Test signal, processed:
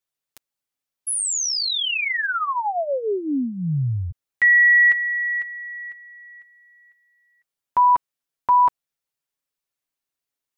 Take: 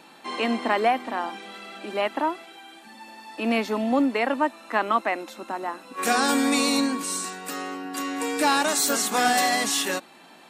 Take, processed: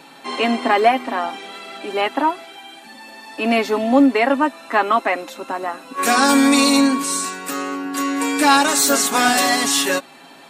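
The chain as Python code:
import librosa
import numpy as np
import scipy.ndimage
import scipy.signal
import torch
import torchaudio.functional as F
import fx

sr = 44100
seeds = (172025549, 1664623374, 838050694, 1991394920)

y = x + 0.56 * np.pad(x, (int(7.3 * sr / 1000.0), 0))[:len(x)]
y = F.gain(torch.from_numpy(y), 5.5).numpy()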